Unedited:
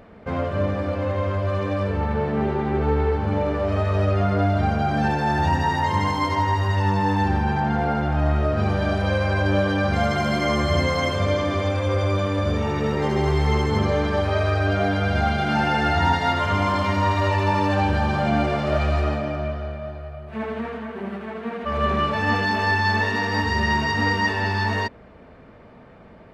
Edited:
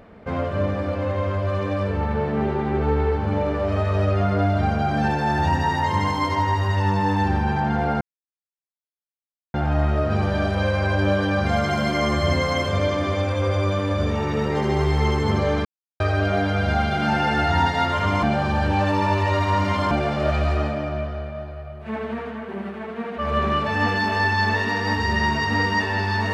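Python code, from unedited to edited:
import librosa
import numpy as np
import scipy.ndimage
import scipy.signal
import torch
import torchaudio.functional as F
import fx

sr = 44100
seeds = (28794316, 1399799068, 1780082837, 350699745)

y = fx.edit(x, sr, fx.insert_silence(at_s=8.01, length_s=1.53),
    fx.silence(start_s=14.12, length_s=0.35),
    fx.reverse_span(start_s=16.7, length_s=1.68), tone=tone)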